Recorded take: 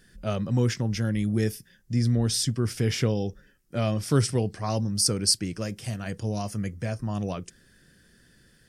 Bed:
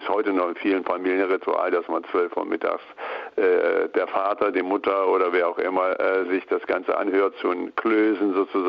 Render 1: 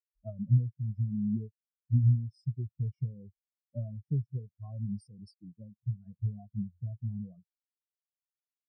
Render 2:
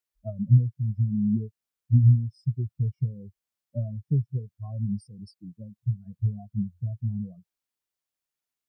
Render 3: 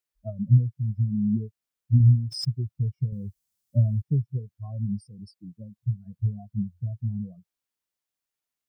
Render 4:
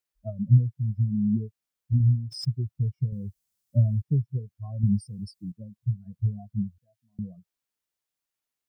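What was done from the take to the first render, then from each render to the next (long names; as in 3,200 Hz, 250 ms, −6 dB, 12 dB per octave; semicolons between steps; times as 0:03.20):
downward compressor 8 to 1, threshold −27 dBFS, peak gain reduction 12 dB; every bin expanded away from the loudest bin 4 to 1
level +6.5 dB
0:02.00–0:02.48: background raised ahead of every attack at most 57 dB per second; 0:03.12–0:04.02: bass and treble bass +10 dB, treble +10 dB
0:01.93–0:02.45: clip gain −4 dB; 0:04.83–0:05.52: bass and treble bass +8 dB, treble +8 dB; 0:06.78–0:07.19: high-pass filter 1,400 Hz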